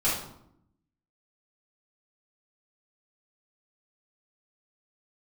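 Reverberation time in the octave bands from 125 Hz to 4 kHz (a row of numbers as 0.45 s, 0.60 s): 1.1 s, 1.1 s, 0.75 s, 0.70 s, 0.50 s, 0.50 s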